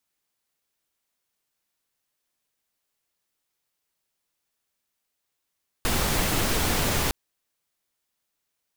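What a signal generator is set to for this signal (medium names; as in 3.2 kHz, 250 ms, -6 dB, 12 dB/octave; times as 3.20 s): noise pink, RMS -24 dBFS 1.26 s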